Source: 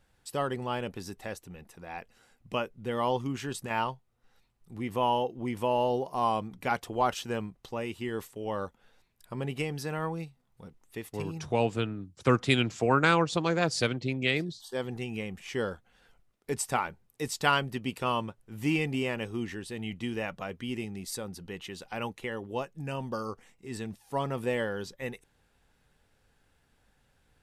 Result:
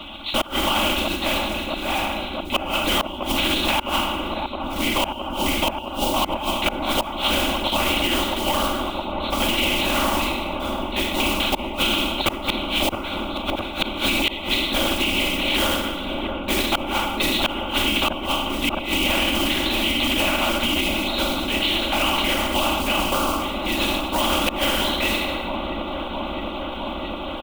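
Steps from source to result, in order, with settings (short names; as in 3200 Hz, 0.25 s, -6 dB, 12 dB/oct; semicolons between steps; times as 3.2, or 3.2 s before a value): spectral trails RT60 0.82 s; LPC vocoder at 8 kHz whisper; modulation noise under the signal 33 dB; low shelf 64 Hz -7.5 dB; notches 50/100/150/200/250/300/350/400 Hz; comb 3.5 ms, depth 70%; flipped gate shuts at -16 dBFS, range -32 dB; bell 3000 Hz +12.5 dB 0.83 oct; fixed phaser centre 470 Hz, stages 6; dark delay 0.663 s, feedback 80%, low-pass 810 Hz, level -11 dB; maximiser +24.5 dB; spectral compressor 2:1; gain -3.5 dB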